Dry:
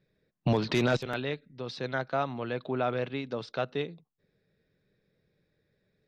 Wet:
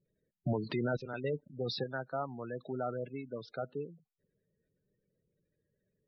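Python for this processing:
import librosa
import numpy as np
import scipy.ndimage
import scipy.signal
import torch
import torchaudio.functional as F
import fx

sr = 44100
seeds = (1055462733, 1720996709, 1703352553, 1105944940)

y = fx.leveller(x, sr, passes=3, at=(1.24, 1.84))
y = fx.spec_gate(y, sr, threshold_db=-15, keep='strong')
y = y * 10.0 ** (-6.5 / 20.0)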